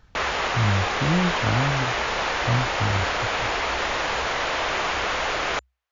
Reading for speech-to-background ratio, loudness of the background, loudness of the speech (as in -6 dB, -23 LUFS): -2.0 dB, -24.5 LUFS, -26.5 LUFS